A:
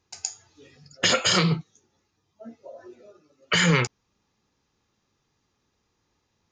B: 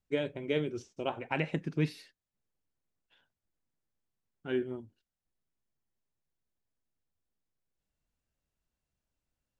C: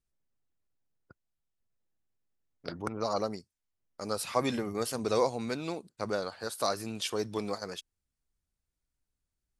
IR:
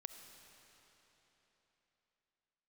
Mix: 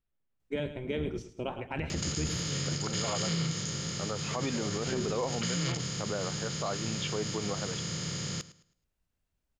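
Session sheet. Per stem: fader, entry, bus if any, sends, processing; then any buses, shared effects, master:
-18.5 dB, 1.90 s, no send, echo send -17 dB, spectral levelling over time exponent 0.2; tone controls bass +14 dB, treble +13 dB
+0.5 dB, 0.40 s, no send, echo send -13.5 dB, octave divider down 1 oct, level -1 dB
+0.5 dB, 0.00 s, no send, no echo send, low-pass 3.5 kHz 24 dB/octave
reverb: none
echo: feedback delay 107 ms, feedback 29%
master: peak limiter -22.5 dBFS, peak gain reduction 10.5 dB

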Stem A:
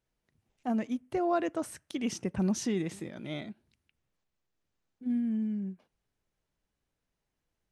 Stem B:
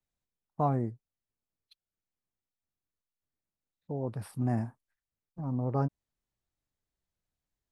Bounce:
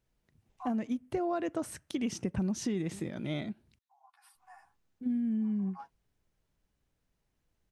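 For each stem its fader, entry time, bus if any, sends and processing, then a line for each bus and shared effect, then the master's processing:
+1.5 dB, 0.00 s, muted 3.79–4.35 s, no send, none
-9.5 dB, 0.00 s, no send, steep high-pass 770 Hz 96 dB/octave; comb 2.8 ms, depth 78%; three-phase chorus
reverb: none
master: bass shelf 240 Hz +6 dB; compression 6:1, threshold -29 dBFS, peak gain reduction 8.5 dB

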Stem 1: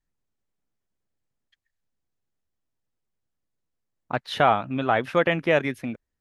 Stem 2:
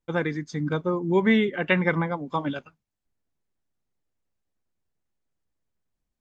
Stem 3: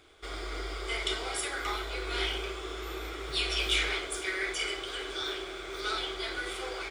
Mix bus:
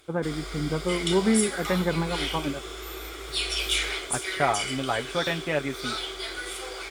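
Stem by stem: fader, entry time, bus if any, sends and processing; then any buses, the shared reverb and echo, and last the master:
-6.5 dB, 0.00 s, no send, comb 7.1 ms, depth 50%
-1.5 dB, 0.00 s, no send, low-pass 1.2 kHz
-0.5 dB, 0.00 s, no send, peaking EQ 15 kHz +13 dB 1.5 oct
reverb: none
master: none

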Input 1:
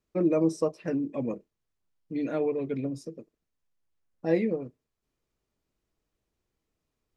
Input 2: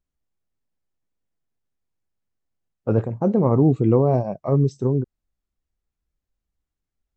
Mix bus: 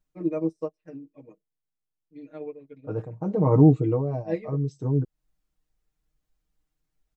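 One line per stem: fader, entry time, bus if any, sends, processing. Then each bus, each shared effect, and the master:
-5.0 dB, 0.00 s, no send, upward expansion 2.5:1, over -40 dBFS
+1.5 dB, 0.00 s, no send, auto duck -15 dB, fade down 0.65 s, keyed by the first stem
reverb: none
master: comb 6.5 ms, depth 94%

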